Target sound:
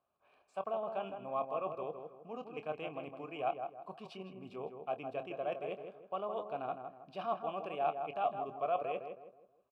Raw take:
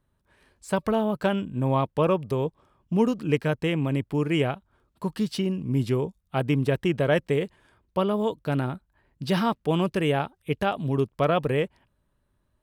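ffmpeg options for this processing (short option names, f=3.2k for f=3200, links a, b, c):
-filter_complex "[0:a]areverse,acompressor=threshold=-30dB:ratio=12,areverse,atempo=1.3,asplit=3[a][b][c];[a]bandpass=f=730:t=q:w=8,volume=0dB[d];[b]bandpass=f=1.09k:t=q:w=8,volume=-6dB[e];[c]bandpass=f=2.44k:t=q:w=8,volume=-9dB[f];[d][e][f]amix=inputs=3:normalize=0,asplit=2[g][h];[h]adelay=26,volume=-12dB[i];[g][i]amix=inputs=2:normalize=0,asplit=2[j][k];[k]adelay=160,lowpass=f=1.5k:p=1,volume=-6dB,asplit=2[l][m];[m]adelay=160,lowpass=f=1.5k:p=1,volume=0.39,asplit=2[n][o];[o]adelay=160,lowpass=f=1.5k:p=1,volume=0.39,asplit=2[p][q];[q]adelay=160,lowpass=f=1.5k:p=1,volume=0.39,asplit=2[r][s];[s]adelay=160,lowpass=f=1.5k:p=1,volume=0.39[t];[j][l][n][p][r][t]amix=inputs=6:normalize=0,volume=7.5dB"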